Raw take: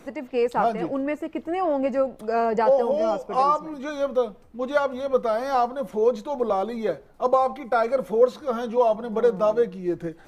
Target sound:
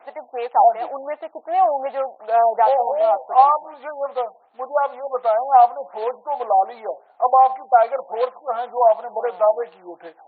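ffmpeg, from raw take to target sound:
ffmpeg -i in.wav -af "acrusher=bits=4:mode=log:mix=0:aa=0.000001,highpass=frequency=750:width_type=q:width=4.9,afftfilt=real='re*lt(b*sr/1024,960*pow(4600/960,0.5+0.5*sin(2*PI*2.7*pts/sr)))':imag='im*lt(b*sr/1024,960*pow(4600/960,0.5+0.5*sin(2*PI*2.7*pts/sr)))':win_size=1024:overlap=0.75,volume=-2dB" out.wav

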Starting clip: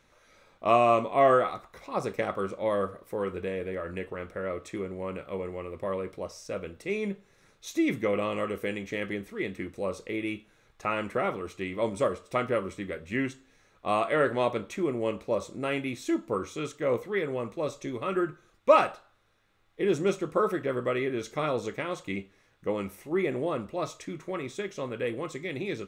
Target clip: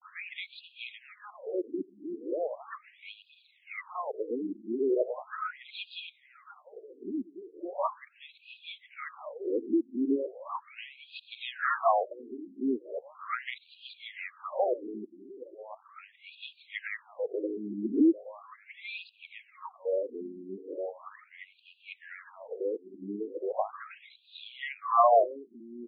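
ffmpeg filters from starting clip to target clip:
ffmpeg -i in.wav -af "areverse,highshelf=frequency=5500:gain=-9.5,aecho=1:1:700|1400|2100:0.178|0.064|0.023,aphaser=in_gain=1:out_gain=1:delay=3.3:decay=0.36:speed=0.89:type=triangular,equalizer=frequency=125:width_type=o:width=1:gain=4,equalizer=frequency=250:width_type=o:width=1:gain=6,equalizer=frequency=500:width_type=o:width=1:gain=3,equalizer=frequency=1000:width_type=o:width=1:gain=8,equalizer=frequency=4000:width_type=o:width=1:gain=12,afftfilt=real='re*between(b*sr/1024,270*pow(3500/270,0.5+0.5*sin(2*PI*0.38*pts/sr))/1.41,270*pow(3500/270,0.5+0.5*sin(2*PI*0.38*pts/sr))*1.41)':imag='im*between(b*sr/1024,270*pow(3500/270,0.5+0.5*sin(2*PI*0.38*pts/sr))/1.41,270*pow(3500/270,0.5+0.5*sin(2*PI*0.38*pts/sr))*1.41)':win_size=1024:overlap=0.75,volume=-3.5dB" out.wav

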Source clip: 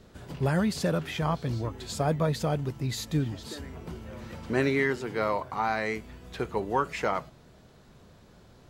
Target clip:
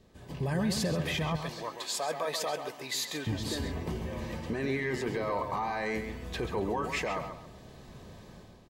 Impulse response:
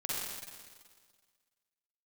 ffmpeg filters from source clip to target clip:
-filter_complex "[0:a]asettb=1/sr,asplit=3[link_01][link_02][link_03];[link_01]atrim=end=1.364[link_04];[link_02]atrim=start=1.36:end=3.27,asetpts=PTS-STARTPTS,afade=type=in:duration=0.004:curve=qsin,afade=type=out:start_time=1.906:duration=0.004:curve=qsin,highpass=700[link_05];[link_03]atrim=start=3.266[link_06];[link_04][link_05]acrossfade=duration=0.004:curve1=hsin:curve2=qsin[link_07];[link_07][link_06]acrossfade=duration=0.004:curve1=qsin:curve2=hsin,dynaudnorm=framelen=150:gausssize=5:maxgain=12dB,alimiter=limit=-16.5dB:level=0:latency=1:release=14,asuperstop=centerf=1400:order=20:qfactor=7.7,asplit=2[link_08][link_09];[link_09]adelay=133,lowpass=frequency=3700:poles=1,volume=-7dB,asplit=2[link_10][link_11];[link_11]adelay=133,lowpass=frequency=3700:poles=1,volume=0.3,asplit=2[link_12][link_13];[link_13]adelay=133,lowpass=frequency=3700:poles=1,volume=0.3,asplit=2[link_14][link_15];[link_15]adelay=133,lowpass=frequency=3700:poles=1,volume=0.3[link_16];[link_08][link_10][link_12][link_14][link_16]amix=inputs=5:normalize=0,volume=-7dB"

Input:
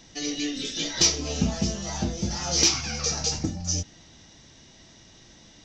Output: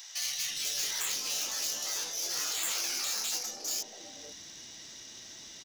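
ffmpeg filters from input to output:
ffmpeg -i in.wav -filter_complex "[0:a]afftfilt=real='re*lt(hypot(re,im),0.0631)':imag='im*lt(hypot(re,im),0.0631)':win_size=1024:overlap=0.75,asplit=2[link_01][link_02];[link_02]acompressor=threshold=-44dB:ratio=6,volume=-2dB[link_03];[link_01][link_03]amix=inputs=2:normalize=0,aeval=exprs='(tanh(28.2*val(0)+0.45)-tanh(0.45))/28.2':channel_layout=same,aemphasis=mode=production:type=bsi,acrossover=split=160|750[link_04][link_05][link_06];[link_04]adelay=180[link_07];[link_05]adelay=490[link_08];[link_07][link_08][link_06]amix=inputs=3:normalize=0,volume=-2dB" out.wav

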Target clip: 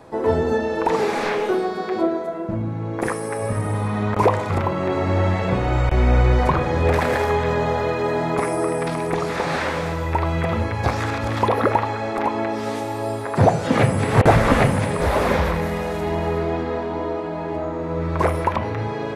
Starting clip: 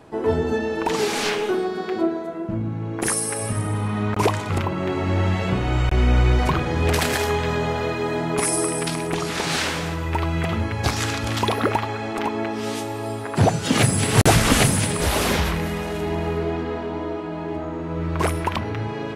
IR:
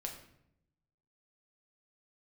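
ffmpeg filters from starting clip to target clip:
-filter_complex "[0:a]acrossover=split=2600[link_01][link_02];[link_02]acompressor=threshold=-41dB:ratio=4:attack=1:release=60[link_03];[link_01][link_03]amix=inputs=2:normalize=0,asplit=2[link_04][link_05];[link_05]highpass=490,equalizer=frequency=510:width_type=q:width=4:gain=10,equalizer=frequency=720:width_type=q:width=4:gain=-4,equalizer=frequency=1600:width_type=q:width=4:gain=-9,equalizer=frequency=3100:width_type=q:width=4:gain=7,lowpass=frequency=4300:width=0.5412,lowpass=frequency=4300:width=1.3066[link_06];[1:a]atrim=start_sample=2205,lowpass=2600[link_07];[link_06][link_07]afir=irnorm=-1:irlink=0,volume=-2dB[link_08];[link_04][link_08]amix=inputs=2:normalize=0,volume=1dB"

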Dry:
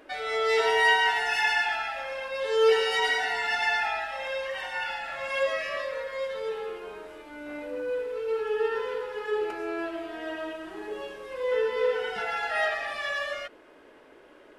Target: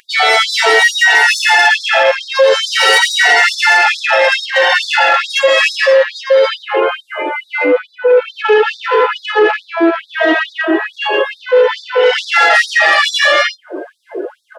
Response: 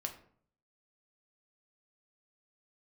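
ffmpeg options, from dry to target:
-af "aecho=1:1:84:0.596,afftdn=noise_reduction=29:noise_floor=-47,aecho=1:1:5.8:0.41,flanger=delay=7.6:depth=4.1:regen=-35:speed=0.26:shape=sinusoidal,lowshelf=frequency=64:gain=-8,acompressor=mode=upward:threshold=-47dB:ratio=2.5,bass=frequency=250:gain=10,treble=frequency=4000:gain=4,acompressor=threshold=-30dB:ratio=12,asoftclip=type=tanh:threshold=-31dB,alimiter=level_in=35dB:limit=-1dB:release=50:level=0:latency=1,afftfilt=real='re*gte(b*sr/1024,260*pow(3600/260,0.5+0.5*sin(2*PI*2.3*pts/sr)))':imag='im*gte(b*sr/1024,260*pow(3600/260,0.5+0.5*sin(2*PI*2.3*pts/sr)))':win_size=1024:overlap=0.75,volume=-2.5dB"

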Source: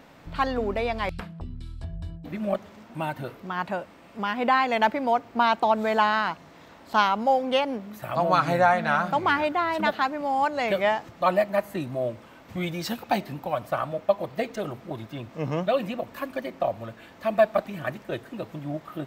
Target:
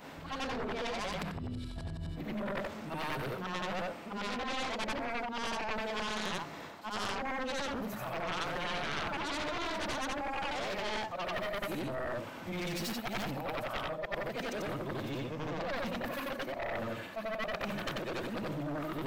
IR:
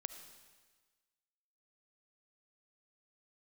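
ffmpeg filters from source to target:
-af "afftfilt=real='re':imag='-im':win_size=8192:overlap=0.75,areverse,acompressor=threshold=-38dB:ratio=6,areverse,highpass=frequency=120:poles=1,aeval=exprs='0.0501*(cos(1*acos(clip(val(0)/0.0501,-1,1)))-cos(1*PI/2))+0.0178*(cos(3*acos(clip(val(0)/0.0501,-1,1)))-cos(3*PI/2))+0.00398*(cos(6*acos(clip(val(0)/0.0501,-1,1)))-cos(6*PI/2))+0.0112*(cos(7*acos(clip(val(0)/0.0501,-1,1)))-cos(7*PI/2))':channel_layout=same,volume=5.5dB"

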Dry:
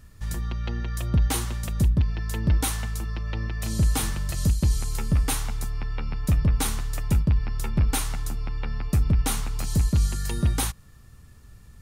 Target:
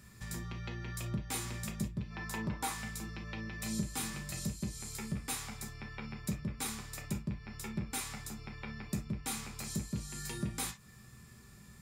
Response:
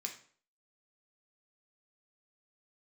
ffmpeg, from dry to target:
-filter_complex "[0:a]asettb=1/sr,asplit=3[link_01][link_02][link_03];[link_01]atrim=end=2.104[link_04];[link_02]atrim=start=2.1:end=2.73,asetpts=PTS-STARTPTS,afade=type=in:duration=0.004:curve=qsin,afade=type=out:start_time=0.626:duration=0.004:curve=qsin,equalizer=frequency=920:width_type=o:width=1.4:gain=11.5[link_05];[link_03]atrim=start=2.726[link_06];[link_04][link_05]acrossfade=duration=0.004:curve1=hsin:curve2=qsin[link_07];[link_07][link_06]acrossfade=duration=0.004:curve1=qsin:curve2=hsin,acompressor=threshold=-32dB:ratio=5[link_08];[1:a]atrim=start_sample=2205,atrim=end_sample=3087[link_09];[link_08][link_09]afir=irnorm=-1:irlink=0,volume=2dB"

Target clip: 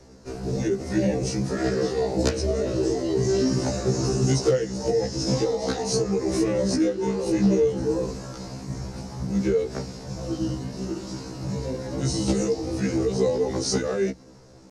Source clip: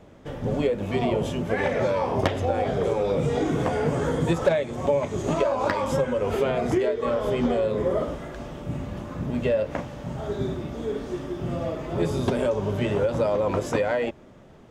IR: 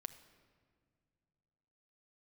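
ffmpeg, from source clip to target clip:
-filter_complex "[0:a]asetrate=36028,aresample=44100,atempo=1.22405,lowpass=6000,highshelf=frequency=2200:gain=-4,bandreject=frequency=60:width_type=h:width=6,bandreject=frequency=120:width_type=h:width=6,bandreject=frequency=180:width_type=h:width=6,bandreject=frequency=240:width_type=h:width=6,bandreject=frequency=300:width_type=h:width=6,bandreject=frequency=360:width_type=h:width=6,acrossover=split=350|680|1500[link_01][link_02][link_03][link_04];[link_03]acompressor=threshold=-48dB:ratio=8[link_05];[link_01][link_02][link_05][link_04]amix=inputs=4:normalize=0,aexciter=amount=14.7:drive=3.2:freq=4400,afftfilt=real='re*1.73*eq(mod(b,3),0)':imag='im*1.73*eq(mod(b,3),0)':win_size=2048:overlap=0.75,volume=3.5dB"

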